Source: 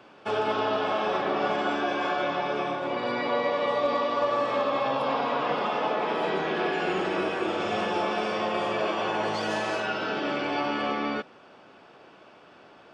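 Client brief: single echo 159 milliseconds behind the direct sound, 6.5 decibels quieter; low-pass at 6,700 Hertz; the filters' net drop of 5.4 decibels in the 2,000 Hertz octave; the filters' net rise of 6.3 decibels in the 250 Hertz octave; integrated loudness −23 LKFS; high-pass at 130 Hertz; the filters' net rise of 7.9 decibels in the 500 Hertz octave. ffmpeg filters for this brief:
ffmpeg -i in.wav -af "highpass=130,lowpass=6700,equalizer=frequency=250:width_type=o:gain=5,equalizer=frequency=500:width_type=o:gain=9,equalizer=frequency=2000:width_type=o:gain=-8.5,aecho=1:1:159:0.473,volume=-2dB" out.wav

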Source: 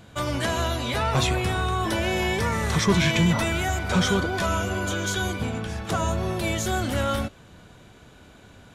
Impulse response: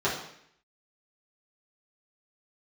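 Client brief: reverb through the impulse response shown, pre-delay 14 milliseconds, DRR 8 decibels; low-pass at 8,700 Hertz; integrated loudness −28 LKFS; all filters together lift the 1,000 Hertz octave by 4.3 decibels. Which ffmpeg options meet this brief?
-filter_complex "[0:a]lowpass=8700,equalizer=frequency=1000:width_type=o:gain=5.5,asplit=2[link_01][link_02];[1:a]atrim=start_sample=2205,adelay=14[link_03];[link_02][link_03]afir=irnorm=-1:irlink=0,volume=-20.5dB[link_04];[link_01][link_04]amix=inputs=2:normalize=0,volume=-5.5dB"

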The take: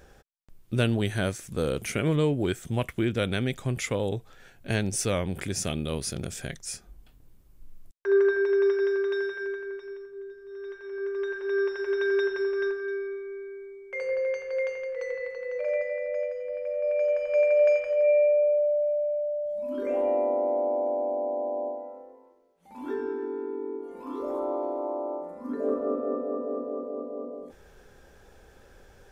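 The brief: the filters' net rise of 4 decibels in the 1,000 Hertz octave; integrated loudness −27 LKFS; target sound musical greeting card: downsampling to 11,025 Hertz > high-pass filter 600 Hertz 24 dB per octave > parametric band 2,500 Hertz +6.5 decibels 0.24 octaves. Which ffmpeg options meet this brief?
ffmpeg -i in.wav -af "equalizer=frequency=1000:width_type=o:gain=6,aresample=11025,aresample=44100,highpass=frequency=600:width=0.5412,highpass=frequency=600:width=1.3066,equalizer=frequency=2500:width_type=o:width=0.24:gain=6.5,volume=3.5dB" out.wav

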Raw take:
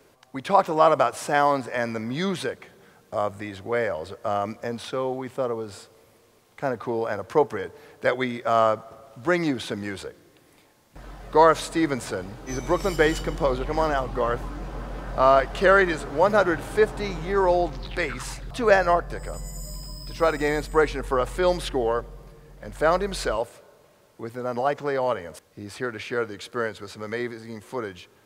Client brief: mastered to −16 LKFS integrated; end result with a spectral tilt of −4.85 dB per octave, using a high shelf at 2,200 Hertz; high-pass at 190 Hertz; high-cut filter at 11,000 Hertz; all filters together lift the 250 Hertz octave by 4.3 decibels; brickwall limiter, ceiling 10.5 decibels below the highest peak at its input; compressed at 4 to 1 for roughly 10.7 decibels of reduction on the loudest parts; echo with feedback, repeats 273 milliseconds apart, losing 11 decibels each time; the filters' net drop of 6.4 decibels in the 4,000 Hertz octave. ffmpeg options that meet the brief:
ffmpeg -i in.wav -af "highpass=190,lowpass=11000,equalizer=frequency=250:width_type=o:gain=7.5,highshelf=frequency=2200:gain=-4,equalizer=frequency=4000:width_type=o:gain=-4.5,acompressor=threshold=-25dB:ratio=4,alimiter=limit=-24dB:level=0:latency=1,aecho=1:1:273|546|819:0.282|0.0789|0.0221,volume=18dB" out.wav

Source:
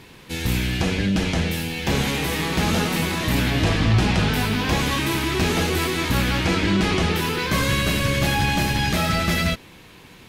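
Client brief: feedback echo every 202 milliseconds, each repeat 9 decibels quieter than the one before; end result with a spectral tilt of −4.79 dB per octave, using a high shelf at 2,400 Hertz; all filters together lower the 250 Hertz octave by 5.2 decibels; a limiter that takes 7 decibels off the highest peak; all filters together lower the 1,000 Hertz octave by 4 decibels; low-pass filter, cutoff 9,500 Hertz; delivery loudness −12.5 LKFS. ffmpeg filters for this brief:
ffmpeg -i in.wav -af "lowpass=9500,equalizer=frequency=250:width_type=o:gain=-7.5,equalizer=frequency=1000:width_type=o:gain=-4,highshelf=frequency=2400:gain=-4,alimiter=limit=-17dB:level=0:latency=1,aecho=1:1:202|404|606|808:0.355|0.124|0.0435|0.0152,volume=13.5dB" out.wav

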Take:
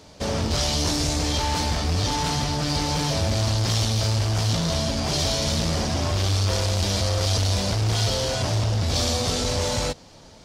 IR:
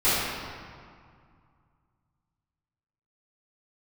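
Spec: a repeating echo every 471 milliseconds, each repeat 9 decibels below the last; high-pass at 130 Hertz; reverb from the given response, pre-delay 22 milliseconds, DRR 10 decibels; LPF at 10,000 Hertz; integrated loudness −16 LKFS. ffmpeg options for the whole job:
-filter_complex "[0:a]highpass=130,lowpass=10000,aecho=1:1:471|942|1413|1884:0.355|0.124|0.0435|0.0152,asplit=2[link_01][link_02];[1:a]atrim=start_sample=2205,adelay=22[link_03];[link_02][link_03]afir=irnorm=-1:irlink=0,volume=-27.5dB[link_04];[link_01][link_04]amix=inputs=2:normalize=0,volume=8dB"

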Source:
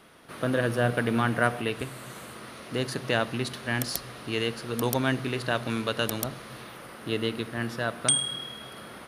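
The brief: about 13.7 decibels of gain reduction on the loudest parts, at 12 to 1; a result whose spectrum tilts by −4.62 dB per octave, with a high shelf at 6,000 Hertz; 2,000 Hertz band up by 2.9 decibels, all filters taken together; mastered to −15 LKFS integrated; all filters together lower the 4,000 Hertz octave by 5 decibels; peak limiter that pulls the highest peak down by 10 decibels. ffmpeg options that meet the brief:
ffmpeg -i in.wav -af "equalizer=frequency=2000:width_type=o:gain=6.5,equalizer=frequency=4000:width_type=o:gain=-8,highshelf=frequency=6000:gain=-8,acompressor=threshold=-31dB:ratio=12,volume=24.5dB,alimiter=limit=-2dB:level=0:latency=1" out.wav

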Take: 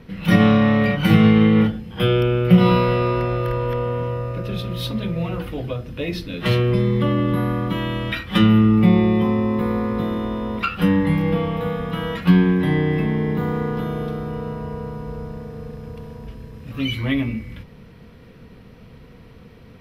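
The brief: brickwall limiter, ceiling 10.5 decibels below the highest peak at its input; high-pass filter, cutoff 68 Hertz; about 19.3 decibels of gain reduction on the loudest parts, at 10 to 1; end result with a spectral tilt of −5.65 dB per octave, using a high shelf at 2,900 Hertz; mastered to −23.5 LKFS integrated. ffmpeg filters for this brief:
ffmpeg -i in.wav -af "highpass=68,highshelf=frequency=2900:gain=5,acompressor=threshold=-28dB:ratio=10,volume=13dB,alimiter=limit=-14.5dB:level=0:latency=1" out.wav

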